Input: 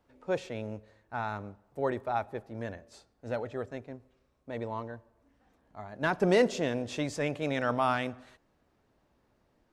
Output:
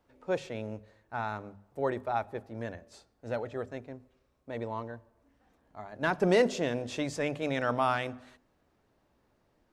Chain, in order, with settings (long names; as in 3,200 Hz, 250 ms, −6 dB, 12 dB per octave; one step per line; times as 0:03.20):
mains-hum notches 50/100/150/200/250 Hz